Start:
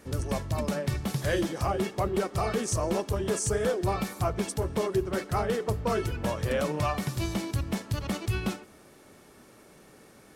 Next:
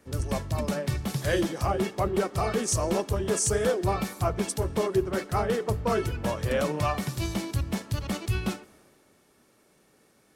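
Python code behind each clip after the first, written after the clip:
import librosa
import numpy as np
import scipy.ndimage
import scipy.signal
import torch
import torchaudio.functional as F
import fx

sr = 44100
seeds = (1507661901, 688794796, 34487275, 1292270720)

y = fx.band_widen(x, sr, depth_pct=40)
y = y * 10.0 ** (1.5 / 20.0)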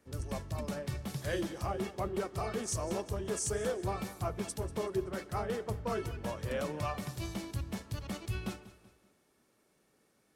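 y = fx.echo_feedback(x, sr, ms=190, feedback_pct=41, wet_db=-17.0)
y = y * 10.0 ** (-9.0 / 20.0)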